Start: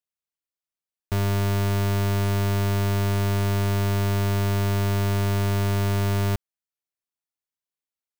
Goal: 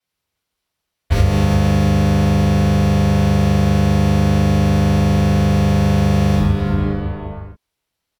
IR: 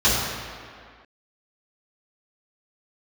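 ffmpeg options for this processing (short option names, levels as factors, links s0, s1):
-filter_complex "[1:a]atrim=start_sample=2205,asetrate=36603,aresample=44100[s0];[0:a][s0]afir=irnorm=-1:irlink=0,acompressor=threshold=0.355:ratio=6,asplit=2[s1][s2];[s2]asetrate=33038,aresample=44100,atempo=1.33484,volume=0.891[s3];[s1][s3]amix=inputs=2:normalize=0,volume=0.531"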